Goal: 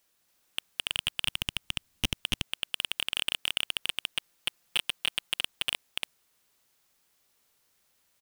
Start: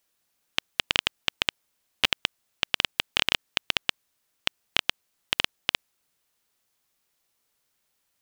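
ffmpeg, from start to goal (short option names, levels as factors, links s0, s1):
-filter_complex "[0:a]asettb=1/sr,asplit=3[s0][s1][s2];[s0]atrim=end=0.854[s3];[s1]atrim=start=0.85:end=2.14,asetpts=PTS-STARTPTS,afade=t=in:d=0.004:c=qsin,afade=t=out:st=1.286:d=0.004:c=qsin,asubboost=boost=10:cutoff=230[s4];[s2]atrim=start=2.136[s5];[s3][s4]acrossfade=d=0.004:c1=hsin:c2=qsin[s6];[s6][s5]acrossfade=d=0.004:c1=qsin:c2=hsin,asplit=3[s7][s8][s9];[s7]afade=t=out:st=3.83:d=0.02[s10];[s8]aecho=1:1:5.8:0.46,afade=t=in:st=3.83:d=0.02,afade=t=out:st=5.39:d=0.02[s11];[s9]afade=t=in:st=5.39:d=0.02[s12];[s10][s11][s12]amix=inputs=3:normalize=0,aecho=1:1:284:0.708,asoftclip=type=hard:threshold=0.126,volume=1.33"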